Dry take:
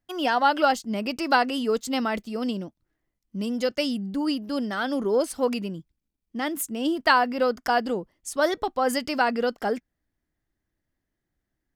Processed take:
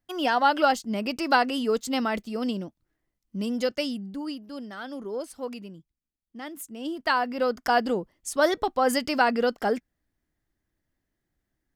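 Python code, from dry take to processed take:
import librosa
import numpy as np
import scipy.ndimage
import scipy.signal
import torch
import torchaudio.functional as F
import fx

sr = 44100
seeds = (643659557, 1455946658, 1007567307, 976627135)

y = fx.gain(x, sr, db=fx.line((3.62, -0.5), (4.47, -10.0), (6.58, -10.0), (7.79, 1.0)))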